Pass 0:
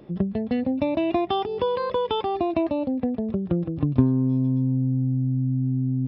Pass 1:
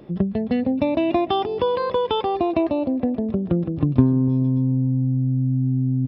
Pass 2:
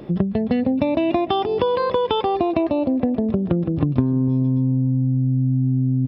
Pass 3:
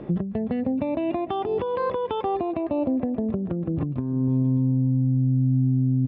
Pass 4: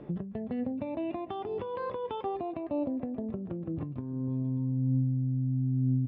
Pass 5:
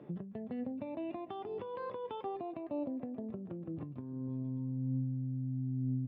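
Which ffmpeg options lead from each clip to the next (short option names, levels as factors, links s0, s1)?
-filter_complex "[0:a]asplit=2[s0][s1];[s1]adelay=294,lowpass=f=1000:p=1,volume=0.119,asplit=2[s2][s3];[s3]adelay=294,lowpass=f=1000:p=1,volume=0.49,asplit=2[s4][s5];[s5]adelay=294,lowpass=f=1000:p=1,volume=0.49,asplit=2[s6][s7];[s7]adelay=294,lowpass=f=1000:p=1,volume=0.49[s8];[s0][s2][s4][s6][s8]amix=inputs=5:normalize=0,volume=1.41"
-af "acompressor=threshold=0.0562:ratio=3,volume=2.24"
-af "lowpass=2300,alimiter=limit=0.168:level=0:latency=1:release=464"
-af "flanger=delay=6.9:depth=2.8:regen=75:speed=0.37:shape=sinusoidal,volume=0.596"
-af "highpass=110,volume=0.501"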